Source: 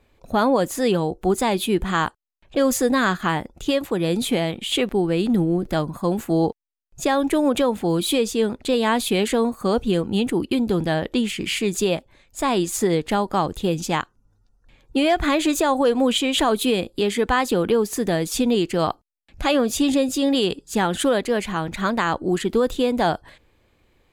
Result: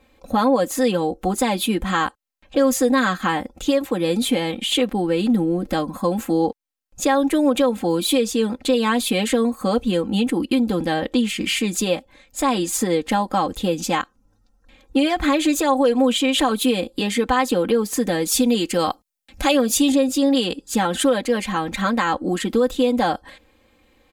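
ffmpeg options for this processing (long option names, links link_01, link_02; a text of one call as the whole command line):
ffmpeg -i in.wav -filter_complex "[0:a]asettb=1/sr,asplit=3[link_01][link_02][link_03];[link_01]atrim=end=18.284[link_04];[link_02]atrim=start=18.28:end=19.92,asetpts=PTS-STARTPTS,afade=type=in:duration=0.004:curve=qsin,afade=type=out:start_time=1.636:duration=0.004:curve=qsin,highshelf=frequency=4700:gain=8[link_05];[link_03]atrim=start=19.916[link_06];[link_04][link_05]acrossfade=duration=0.004:curve1=hsin:curve2=qsin[link_07];[link_07][link_06]acrossfade=duration=0.004:curve1=qsin:curve2=hsin,lowshelf=frequency=60:gain=-9,aecho=1:1:3.8:0.81,acompressor=threshold=-26dB:ratio=1.5,volume=3dB" out.wav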